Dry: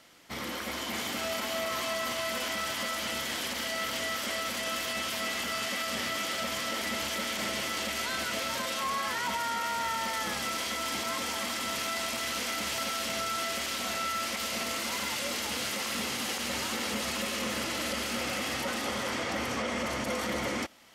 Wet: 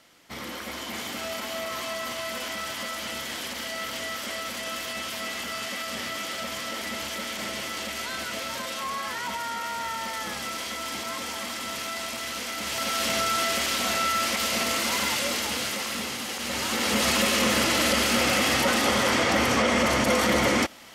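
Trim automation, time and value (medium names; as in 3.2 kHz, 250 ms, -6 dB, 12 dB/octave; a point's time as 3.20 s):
12.54 s 0 dB
13.05 s +7 dB
15.08 s +7 dB
16.29 s 0 dB
17.06 s +10 dB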